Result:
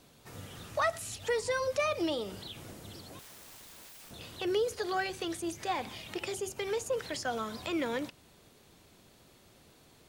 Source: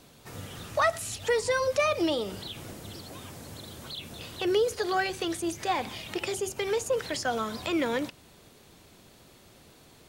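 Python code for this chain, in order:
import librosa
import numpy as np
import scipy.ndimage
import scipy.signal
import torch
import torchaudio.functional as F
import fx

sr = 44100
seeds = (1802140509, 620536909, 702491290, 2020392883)

y = fx.overflow_wrap(x, sr, gain_db=42.0, at=(3.19, 4.11))
y = y * librosa.db_to_amplitude(-5.0)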